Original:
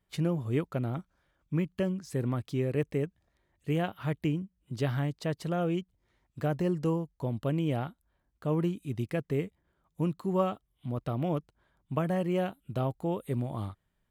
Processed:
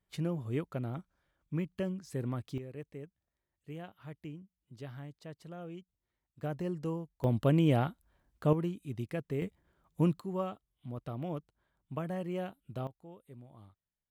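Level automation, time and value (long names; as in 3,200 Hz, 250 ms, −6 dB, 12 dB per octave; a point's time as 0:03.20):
−5 dB
from 0:02.58 −15 dB
from 0:06.43 −7 dB
from 0:07.24 +3.5 dB
from 0:08.53 −5 dB
from 0:09.42 +2 dB
from 0:10.20 −7.5 dB
from 0:12.87 −20 dB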